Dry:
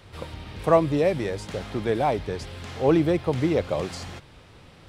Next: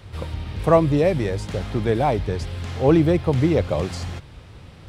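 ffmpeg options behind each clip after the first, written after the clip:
ffmpeg -i in.wav -af "equalizer=frequency=66:width=0.49:gain=9,volume=2dB" out.wav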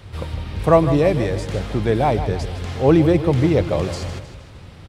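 ffmpeg -i in.wav -af "aecho=1:1:156|312|468|624|780:0.266|0.128|0.0613|0.0294|0.0141,volume=2dB" out.wav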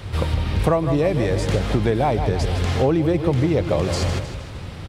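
ffmpeg -i in.wav -af "acompressor=threshold=-22dB:ratio=12,volume=7dB" out.wav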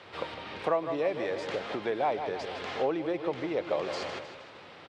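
ffmpeg -i in.wav -af "highpass=440,lowpass=3800,volume=-6.5dB" out.wav

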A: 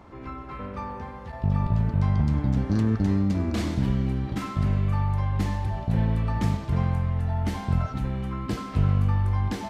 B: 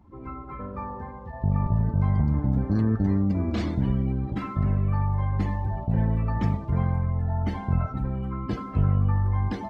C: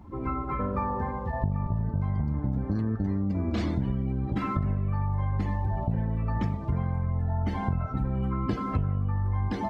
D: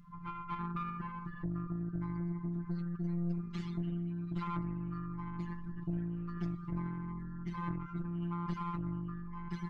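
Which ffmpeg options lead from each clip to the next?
ffmpeg -i in.wav -af "afftdn=noise_reduction=19:noise_floor=-41" out.wav
ffmpeg -i in.wav -af "acompressor=threshold=-31dB:ratio=12,volume=7.5dB" out.wav
ffmpeg -i in.wav -af "afftfilt=real='re*(1-between(b*sr/4096,250,1000))':imag='im*(1-between(b*sr/4096,250,1000))':win_size=4096:overlap=0.75,afftfilt=real='hypot(re,im)*cos(PI*b)':imag='0':win_size=1024:overlap=0.75,aeval=exprs='(tanh(31.6*val(0)+0.65)-tanh(0.65))/31.6':channel_layout=same,volume=1dB" out.wav

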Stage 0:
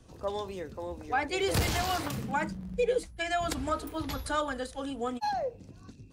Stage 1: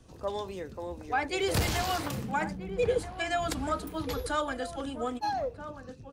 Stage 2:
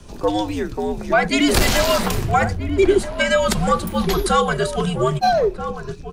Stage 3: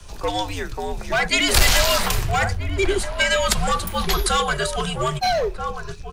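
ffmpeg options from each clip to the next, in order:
ffmpeg -i in.wav -filter_complex "[0:a]asplit=2[link_01][link_02];[link_02]adelay=1283,volume=-10dB,highshelf=frequency=4000:gain=-28.9[link_03];[link_01][link_03]amix=inputs=2:normalize=0" out.wav
ffmpeg -i in.wav -filter_complex "[0:a]asplit=2[link_01][link_02];[link_02]alimiter=limit=-24dB:level=0:latency=1:release=349,volume=2dB[link_03];[link_01][link_03]amix=inputs=2:normalize=0,afreqshift=-100,volume=8dB" out.wav
ffmpeg -i in.wav -filter_complex "[0:a]equalizer=frequency=260:width_type=o:width=2:gain=-14.5,acrossover=split=310|2200[link_01][link_02][link_03];[link_02]asoftclip=type=hard:threshold=-22.5dB[link_04];[link_01][link_04][link_03]amix=inputs=3:normalize=0,volume=3.5dB" out.wav

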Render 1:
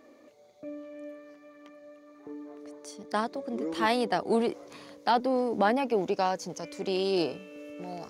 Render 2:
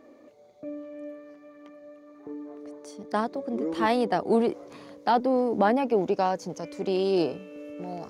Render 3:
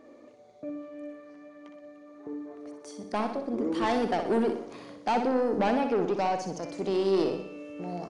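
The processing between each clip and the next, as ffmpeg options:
ffmpeg -i in.wav -af "tiltshelf=frequency=1500:gain=4" out.wav
ffmpeg -i in.wav -af "asoftclip=type=tanh:threshold=-21dB,aecho=1:1:62|124|186|248|310|372:0.422|0.215|0.11|0.0559|0.0285|0.0145,aresample=22050,aresample=44100" out.wav

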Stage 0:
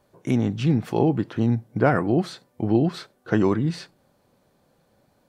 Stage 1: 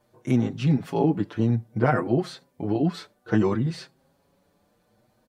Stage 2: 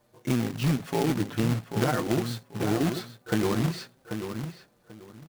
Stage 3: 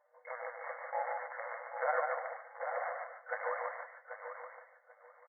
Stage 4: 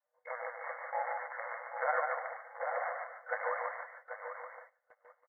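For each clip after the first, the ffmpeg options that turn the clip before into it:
ffmpeg -i in.wav -filter_complex "[0:a]asplit=2[link_01][link_02];[link_02]adelay=6.2,afreqshift=0.6[link_03];[link_01][link_03]amix=inputs=2:normalize=1,volume=1dB" out.wav
ffmpeg -i in.wav -filter_complex "[0:a]acompressor=threshold=-22dB:ratio=6,asplit=2[link_01][link_02];[link_02]adelay=788,lowpass=frequency=2500:poles=1,volume=-7.5dB,asplit=2[link_03][link_04];[link_04]adelay=788,lowpass=frequency=2500:poles=1,volume=0.21,asplit=2[link_05][link_06];[link_06]adelay=788,lowpass=frequency=2500:poles=1,volume=0.21[link_07];[link_01][link_03][link_05][link_07]amix=inputs=4:normalize=0,acrusher=bits=2:mode=log:mix=0:aa=0.000001" out.wav
ffmpeg -i in.wav -filter_complex "[0:a]afftfilt=real='re*between(b*sr/4096,480,2200)':imag='im*between(b*sr/4096,480,2200)':win_size=4096:overlap=0.75,asplit=2[link_01][link_02];[link_02]aecho=0:1:145|290|435:0.668|0.14|0.0295[link_03];[link_01][link_03]amix=inputs=2:normalize=0,volume=-3.5dB" out.wav
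ffmpeg -i in.wav -af "agate=range=-17dB:threshold=-57dB:ratio=16:detection=peak,adynamicequalizer=threshold=0.00316:dfrequency=530:dqfactor=1.3:tfrequency=530:tqfactor=1.3:attack=5:release=100:ratio=0.375:range=2.5:mode=cutabove:tftype=bell,volume=2.5dB" out.wav

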